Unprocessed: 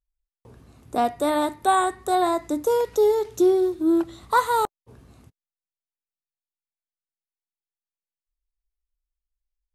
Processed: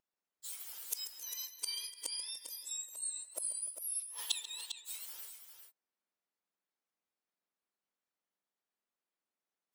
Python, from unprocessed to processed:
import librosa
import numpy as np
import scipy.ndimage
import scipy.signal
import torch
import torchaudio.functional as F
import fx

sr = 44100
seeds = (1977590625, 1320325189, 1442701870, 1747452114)

y = fx.octave_mirror(x, sr, pivot_hz=1900.0)
y = scipy.signal.sosfilt(scipy.signal.butter(2, 1200.0, 'highpass', fs=sr, output='sos'), y)
y = fx.high_shelf(y, sr, hz=3100.0, db=12.0)
y = fx.gate_flip(y, sr, shuts_db=-24.0, range_db=-32)
y = fx.vibrato(y, sr, rate_hz=2.2, depth_cents=19.0)
y = fx.echo_multitap(y, sr, ms=(138, 294, 400), db=(-13.5, -18.0, -8.5))
y = F.gain(torch.from_numpy(y), 5.0).numpy()